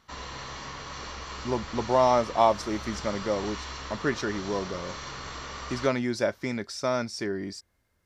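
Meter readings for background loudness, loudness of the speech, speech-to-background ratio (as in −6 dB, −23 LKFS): −38.5 LKFS, −28.5 LKFS, 10.0 dB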